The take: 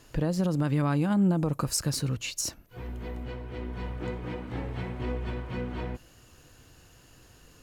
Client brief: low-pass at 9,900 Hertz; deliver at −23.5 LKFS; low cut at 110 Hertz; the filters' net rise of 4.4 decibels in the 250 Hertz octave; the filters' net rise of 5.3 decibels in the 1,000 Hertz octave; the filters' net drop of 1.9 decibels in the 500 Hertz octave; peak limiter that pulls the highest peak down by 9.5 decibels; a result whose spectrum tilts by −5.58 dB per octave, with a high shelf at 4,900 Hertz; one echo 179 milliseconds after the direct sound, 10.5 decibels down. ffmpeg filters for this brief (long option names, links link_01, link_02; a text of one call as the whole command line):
ffmpeg -i in.wav -af "highpass=110,lowpass=9900,equalizer=frequency=250:width_type=o:gain=8.5,equalizer=frequency=500:width_type=o:gain=-7.5,equalizer=frequency=1000:width_type=o:gain=8.5,highshelf=frequency=4900:gain=-3.5,alimiter=limit=-21.5dB:level=0:latency=1,aecho=1:1:179:0.299,volume=8dB" out.wav